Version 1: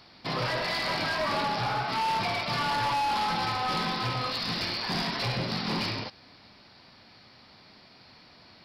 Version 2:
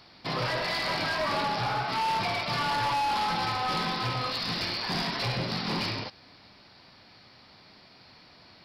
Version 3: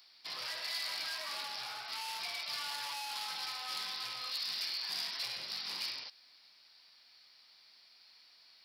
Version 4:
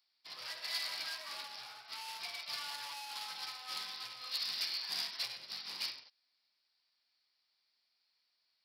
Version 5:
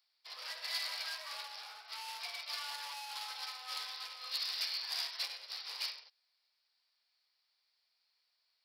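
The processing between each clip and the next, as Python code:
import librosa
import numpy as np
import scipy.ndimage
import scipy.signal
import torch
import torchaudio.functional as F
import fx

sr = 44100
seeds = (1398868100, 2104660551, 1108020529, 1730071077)

y1 = fx.peak_eq(x, sr, hz=230.0, db=-3.0, octaves=0.2)
y2 = np.diff(y1, prepend=0.0)
y3 = fx.upward_expand(y2, sr, threshold_db=-50.0, expansion=2.5)
y3 = y3 * librosa.db_to_amplitude(2.5)
y4 = scipy.signal.sosfilt(scipy.signal.ellip(4, 1.0, 40, 440.0, 'highpass', fs=sr, output='sos'), y3)
y4 = y4 * librosa.db_to_amplitude(1.0)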